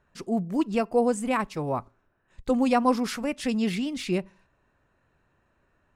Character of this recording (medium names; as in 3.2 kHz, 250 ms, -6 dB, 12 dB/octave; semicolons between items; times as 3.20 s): noise floor -71 dBFS; spectral tilt -5.0 dB/octave